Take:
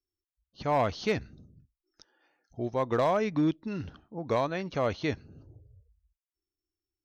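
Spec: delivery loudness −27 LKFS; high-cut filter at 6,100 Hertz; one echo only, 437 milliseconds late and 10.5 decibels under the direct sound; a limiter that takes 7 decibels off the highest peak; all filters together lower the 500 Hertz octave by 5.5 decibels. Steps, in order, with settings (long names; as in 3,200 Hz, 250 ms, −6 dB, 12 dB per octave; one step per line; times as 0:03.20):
low-pass filter 6,100 Hz
parametric band 500 Hz −7 dB
brickwall limiter −26 dBFS
single-tap delay 437 ms −10.5 dB
level +10 dB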